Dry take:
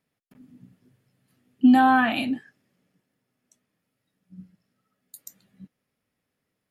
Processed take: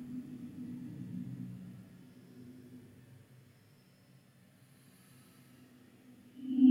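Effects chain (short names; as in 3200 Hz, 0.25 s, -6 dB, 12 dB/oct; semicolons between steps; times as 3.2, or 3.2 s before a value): Paulstretch 5.9×, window 0.25 s, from 0.44; gain +6.5 dB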